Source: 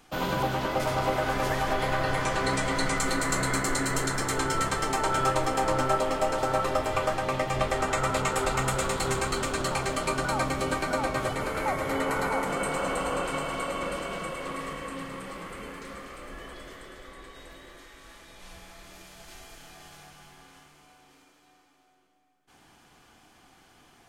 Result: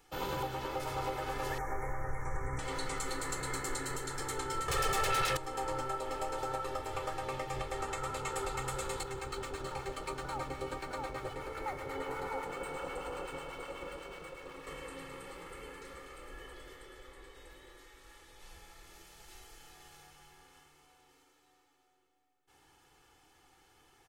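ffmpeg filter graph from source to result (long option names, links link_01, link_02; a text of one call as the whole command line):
ffmpeg -i in.wav -filter_complex "[0:a]asettb=1/sr,asplit=3[link_01][link_02][link_03];[link_01]atrim=end=1.584[link_04];[link_02]atrim=start=1.58:end=2.59,asetpts=PTS-STARTPTS,afade=type=in:duration=0.004:curve=qsin,afade=type=out:start_time=1.006:duration=0.004:curve=qsin,acrossover=split=3200[link_05][link_06];[link_06]acompressor=threshold=-43dB:ratio=4:attack=1:release=60[link_07];[link_05][link_07]amix=inputs=2:normalize=0,asubboost=boost=11:cutoff=150,asuperstop=centerf=3600:order=20:qfactor=1.1[link_08];[link_03]atrim=start=2.586[link_09];[link_04][link_08]acrossfade=duration=0.004:curve1=hsin:curve2=qsin[link_10];[link_10][link_09]acrossfade=duration=0.004:curve1=qsin:curve2=hsin,asettb=1/sr,asplit=3[link_11][link_12][link_13];[link_11]atrim=end=4.684[link_14];[link_12]atrim=start=4.68:end=5.37,asetpts=PTS-STARTPTS,afade=type=in:duration=0.004:curve=qsin,afade=type=out:start_time=0.686:duration=0.004:curve=qsin,aecho=1:1:1.7:0.66,atrim=end_sample=30429,aeval=exprs='0.335*sin(PI/2*5.01*val(0)/0.335)':channel_layout=same[link_15];[link_13]atrim=start=5.366[link_16];[link_14][link_15]acrossfade=duration=0.004:curve1=hsin:curve2=qsin[link_17];[link_17][link_16]acrossfade=duration=0.004:curve1=qsin:curve2=hsin,asettb=1/sr,asplit=3[link_18][link_19][link_20];[link_18]atrim=end=9.034[link_21];[link_19]atrim=start=9.03:end=14.67,asetpts=PTS-STARTPTS,afade=type=in:duration=0.004:curve=qsin,afade=type=out:start_time=5.636:duration=0.004:curve=qsin,highshelf=frequency=5100:gain=-9,acrossover=split=870[link_22][link_23];[link_22]aeval=exprs='val(0)*(1-0.5/2+0.5/2*cos(2*PI*8.1*n/s))':channel_layout=same[link_24];[link_23]aeval=exprs='val(0)*(1-0.5/2-0.5/2*cos(2*PI*8.1*n/s))':channel_layout=same[link_25];[link_24][link_25]amix=inputs=2:normalize=0,aeval=exprs='sgn(val(0))*max(abs(val(0))-0.00376,0)':channel_layout=same[link_26];[link_20]atrim=start=14.666[link_27];[link_21][link_26]acrossfade=duration=0.004:curve1=hsin:curve2=qsin[link_28];[link_28][link_27]acrossfade=duration=0.004:curve1=qsin:curve2=hsin,highshelf=frequency=12000:gain=5,aecho=1:1:2.3:0.65,alimiter=limit=-16.5dB:level=0:latency=1:release=429,volume=-9dB" out.wav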